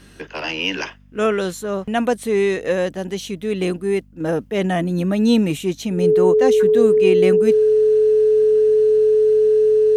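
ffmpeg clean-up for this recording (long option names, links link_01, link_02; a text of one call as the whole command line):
ffmpeg -i in.wav -af "bandreject=frequency=49.2:width_type=h:width=4,bandreject=frequency=98.4:width_type=h:width=4,bandreject=frequency=147.6:width_type=h:width=4,bandreject=frequency=196.8:width_type=h:width=4,bandreject=frequency=246:width_type=h:width=4,bandreject=frequency=430:width=30" out.wav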